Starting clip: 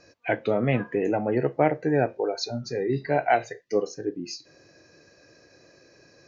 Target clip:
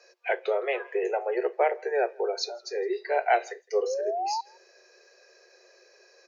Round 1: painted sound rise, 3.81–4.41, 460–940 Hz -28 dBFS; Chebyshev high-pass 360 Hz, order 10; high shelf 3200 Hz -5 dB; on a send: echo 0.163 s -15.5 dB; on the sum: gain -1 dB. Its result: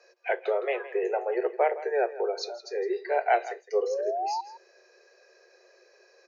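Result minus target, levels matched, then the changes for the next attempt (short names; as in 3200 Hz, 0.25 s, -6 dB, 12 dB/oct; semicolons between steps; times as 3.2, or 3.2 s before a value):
echo-to-direct +11.5 dB; 8000 Hz band -5.0 dB
change: high shelf 3200 Hz +2 dB; change: echo 0.163 s -27 dB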